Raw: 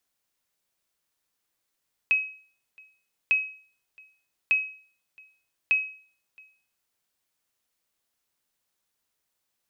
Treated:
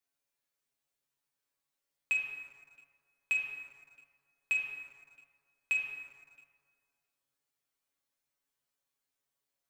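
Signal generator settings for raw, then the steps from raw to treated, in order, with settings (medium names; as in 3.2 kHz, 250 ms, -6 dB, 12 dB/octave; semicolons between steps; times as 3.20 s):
sonar ping 2.55 kHz, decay 0.46 s, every 1.20 s, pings 4, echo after 0.67 s, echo -28.5 dB -15 dBFS
feedback comb 140 Hz, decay 0.18 s, harmonics all, mix 90%; plate-style reverb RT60 2.4 s, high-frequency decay 0.4×, DRR 0.5 dB; waveshaping leveller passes 1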